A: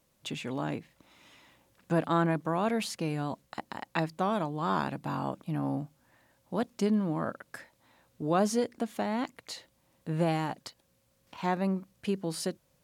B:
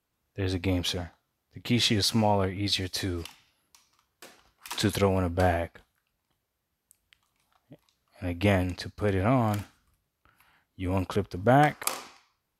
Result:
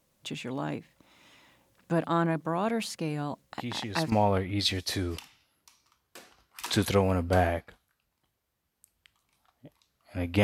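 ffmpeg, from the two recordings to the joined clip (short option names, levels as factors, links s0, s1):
-filter_complex "[1:a]asplit=2[s0][s1];[0:a]apad=whole_dur=10.43,atrim=end=10.43,atrim=end=4.122[s2];[s1]atrim=start=2.188:end=8.5[s3];[s0]atrim=start=1.59:end=2.19,asetpts=PTS-STARTPTS,volume=0.266,afade=t=in:d=0.004:c=hsin,afade=t=out:st=0.596:d=0.004:c=hsin,adelay=3520[s4];[s2][s3]acrossfade=d=0.004:c1=hsin:c2=hsin[s5];[s5][s4]amix=inputs=2:normalize=0"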